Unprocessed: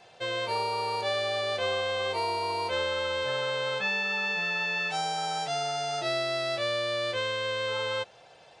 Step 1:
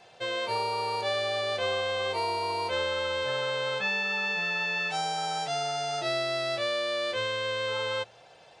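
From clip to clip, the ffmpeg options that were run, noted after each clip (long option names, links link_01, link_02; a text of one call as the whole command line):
ffmpeg -i in.wav -af "bandreject=frequency=58.42:width_type=h:width=4,bandreject=frequency=116.84:width_type=h:width=4" out.wav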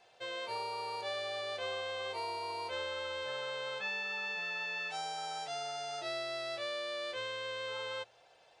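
ffmpeg -i in.wav -af "equalizer=frequency=150:width_type=o:width=1.7:gain=-8.5,volume=-8.5dB" out.wav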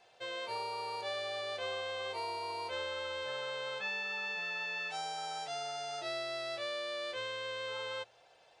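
ffmpeg -i in.wav -af anull out.wav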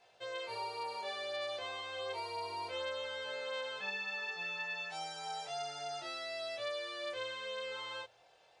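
ffmpeg -i in.wav -af "flanger=delay=18.5:depth=5.6:speed=0.31,volume=1dB" out.wav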